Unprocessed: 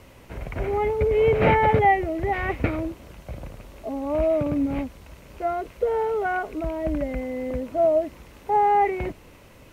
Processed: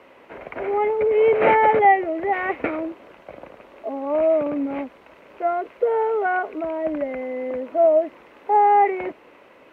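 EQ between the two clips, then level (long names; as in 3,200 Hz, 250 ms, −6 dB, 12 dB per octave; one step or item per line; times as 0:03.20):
three-way crossover with the lows and the highs turned down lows −23 dB, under 270 Hz, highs −20 dB, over 2,900 Hz
low-shelf EQ 61 Hz −9.5 dB
+4.0 dB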